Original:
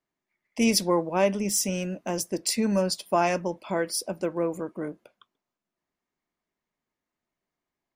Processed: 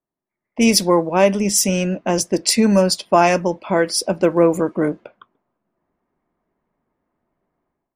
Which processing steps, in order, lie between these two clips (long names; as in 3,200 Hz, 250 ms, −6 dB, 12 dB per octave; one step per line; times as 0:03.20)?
automatic gain control gain up to 16 dB
low-pass that shuts in the quiet parts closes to 1,100 Hz, open at −12 dBFS